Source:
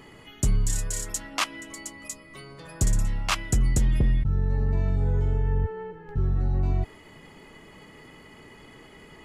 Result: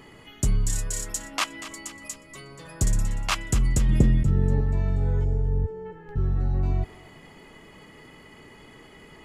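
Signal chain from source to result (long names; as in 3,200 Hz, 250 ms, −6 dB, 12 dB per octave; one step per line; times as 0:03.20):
0:03.89–0:04.61: parametric band 260 Hz +8.5 dB 2.6 octaves
0:05.24–0:05.86: gain on a spectral selection 880–4,400 Hz −14 dB
feedback echo with a high-pass in the loop 240 ms, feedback 50%, high-pass 420 Hz, level −14.5 dB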